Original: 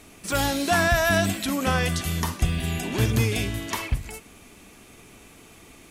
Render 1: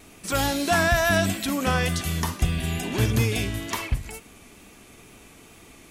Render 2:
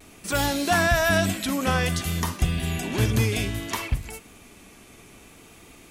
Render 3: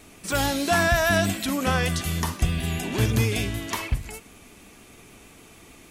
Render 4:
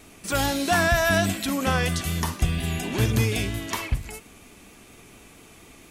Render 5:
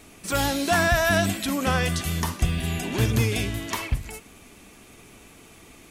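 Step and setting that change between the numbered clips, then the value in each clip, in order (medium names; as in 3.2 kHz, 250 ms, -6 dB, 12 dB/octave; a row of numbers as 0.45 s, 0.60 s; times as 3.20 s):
vibrato, rate: 2.2 Hz, 0.57 Hz, 6.5 Hz, 4.3 Hz, 11 Hz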